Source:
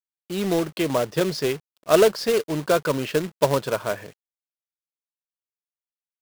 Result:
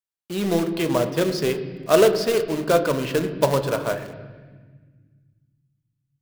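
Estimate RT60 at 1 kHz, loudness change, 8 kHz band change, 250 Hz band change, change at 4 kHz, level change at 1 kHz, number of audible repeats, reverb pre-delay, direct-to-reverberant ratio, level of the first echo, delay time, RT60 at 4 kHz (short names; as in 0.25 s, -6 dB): 1.3 s, +1.0 dB, 0.0 dB, +2.0 dB, +0.5 dB, +1.0 dB, none, 16 ms, 8.0 dB, none, none, 1.3 s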